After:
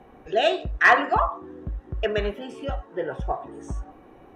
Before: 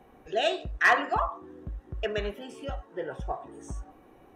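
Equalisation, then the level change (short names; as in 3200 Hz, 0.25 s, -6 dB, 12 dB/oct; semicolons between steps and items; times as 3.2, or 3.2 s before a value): LPF 3500 Hz 6 dB/oct; +6.0 dB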